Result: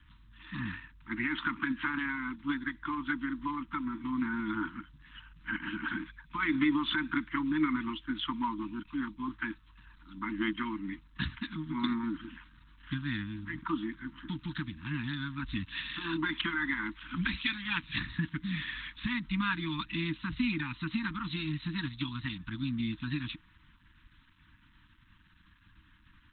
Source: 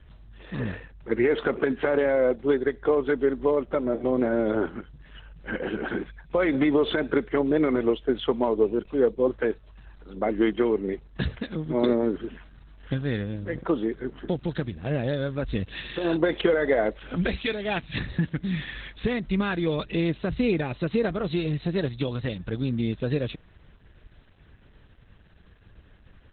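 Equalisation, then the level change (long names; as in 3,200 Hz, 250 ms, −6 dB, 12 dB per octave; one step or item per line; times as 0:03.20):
Chebyshev band-stop filter 320–920 Hz, order 5
low-shelf EQ 270 Hz −9.5 dB
0.0 dB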